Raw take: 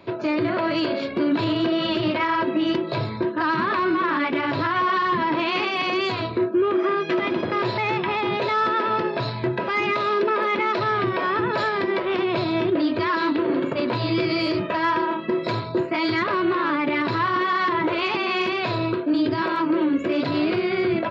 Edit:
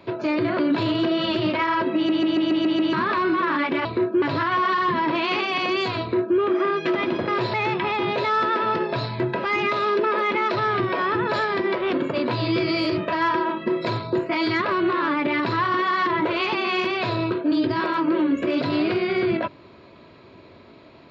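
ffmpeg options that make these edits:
-filter_complex "[0:a]asplit=12[a][b][c][d][e][f][g][h][i][j][k][l];[a]atrim=end=0.592[m];[b]atrim=start=1.198:end=2.702[n];[c]atrim=start=2.558:end=2.702[o];[d]atrim=start=2.558:end=2.702[p];[e]atrim=start=2.558:end=2.702[q];[f]atrim=start=2.558:end=2.702[r];[g]atrim=start=2.558:end=2.702[s];[h]atrim=start=2.558:end=2.702[t];[i]atrim=start=3.538:end=4.462[u];[j]atrim=start=6.248:end=6.622[v];[k]atrim=start=4.458:end=12.172[w];[l]atrim=start=13.548[x];[m][n]acrossfade=d=0.004:c1=hsin:c2=hsin[y];[y][o]acrossfade=d=0.004:c1=hsin:c2=hsin[z];[z][p]acrossfade=d=0.004:c1=hsin:c2=hsin[aa];[aa][q]acrossfade=d=0.004:c1=hsin:c2=hsin[ab];[ab][r]acrossfade=d=0.004:c1=hsin:c2=hsin[ac];[ac][s]acrossfade=d=0.004:c1=hsin:c2=hsin[ad];[ad][t]acrossfade=d=0.004:c1=hsin:c2=hsin[ae];[ae][u]acrossfade=d=0.004:c1=hsin:c2=hsin[af];[af][v]acrossfade=d=0.004:c1=hsin:c2=hsin[ag];[ag][w]acrossfade=d=0.004:c1=hsin:c2=hsin[ah];[ah][x]acrossfade=d=0.004:c1=hsin:c2=hsin"

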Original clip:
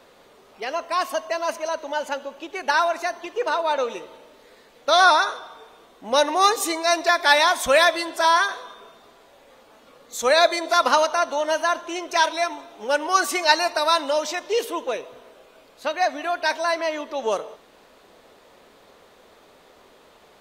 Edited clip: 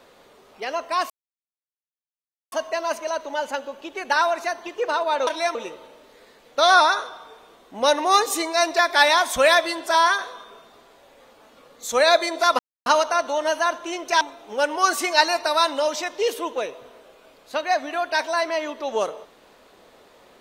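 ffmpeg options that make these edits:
-filter_complex "[0:a]asplit=6[a][b][c][d][e][f];[a]atrim=end=1.1,asetpts=PTS-STARTPTS,afade=t=out:st=1.096:d=0.004:c=hsin,apad=pad_dur=1.42[g];[b]atrim=start=1.1:end=3.852,asetpts=PTS-STARTPTS,afade=t=in:d=0.004:c=hsin[h];[c]atrim=start=12.238:end=12.522[i];[d]atrim=start=3.848:end=10.89,asetpts=PTS-STARTPTS,afade=t=out:st=7.038:d=0.004:c=hsin,apad=pad_dur=0.27[j];[e]atrim=start=10.89:end=12.242,asetpts=PTS-STARTPTS,afade=t=in:d=0.004:c=hsin[k];[f]atrim=start=12.518[l];[g][h]concat=n=2:v=0:a=1[m];[m][i]acrossfade=d=0.004:c1=hsin:c2=hsin[n];[j][k]concat=n=2:v=0:a=1[o];[n][o]acrossfade=d=0.004:c1=hsin:c2=hsin[p];[p][l]acrossfade=d=0.004:c1=hsin:c2=hsin"

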